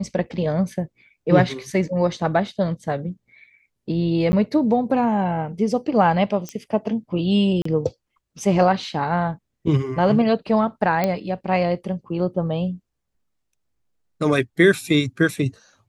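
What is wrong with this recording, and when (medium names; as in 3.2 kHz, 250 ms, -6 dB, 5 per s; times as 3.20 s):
4.32–4.33 s: dropout 10 ms
6.49 s: pop -15 dBFS
7.62–7.65 s: dropout 34 ms
11.04 s: pop -8 dBFS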